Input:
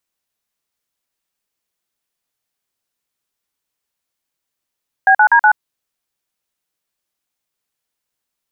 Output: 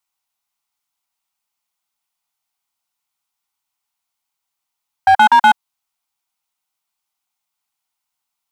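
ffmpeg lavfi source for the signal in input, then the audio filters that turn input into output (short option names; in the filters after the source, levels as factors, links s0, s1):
-f lavfi -i "aevalsrc='0.355*clip(min(mod(t,0.123),0.078-mod(t,0.123))/0.002,0,1)*(eq(floor(t/0.123),0)*(sin(2*PI*770*mod(t,0.123))+sin(2*PI*1633*mod(t,0.123)))+eq(floor(t/0.123),1)*(sin(2*PI*852*mod(t,0.123))+sin(2*PI*1477*mod(t,0.123)))+eq(floor(t/0.123),2)*(sin(2*PI*941*mod(t,0.123))+sin(2*PI*1633*mod(t,0.123)))+eq(floor(t/0.123),3)*(sin(2*PI*852*mod(t,0.123))+sin(2*PI*1477*mod(t,0.123))))':d=0.492:s=44100"
-af "lowshelf=f=660:t=q:w=3:g=-6.5,bandreject=f=1700:w=5.9,asoftclip=type=hard:threshold=0.531"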